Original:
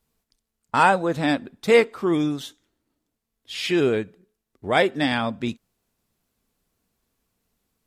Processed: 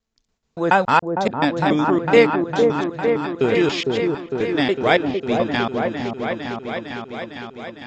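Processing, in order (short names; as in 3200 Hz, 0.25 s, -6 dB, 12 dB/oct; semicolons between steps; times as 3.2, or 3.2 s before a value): slices in reverse order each 0.142 s, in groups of 4; repeats that get brighter 0.455 s, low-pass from 750 Hz, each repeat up 1 oct, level -3 dB; downsampling 16000 Hz; gain +2.5 dB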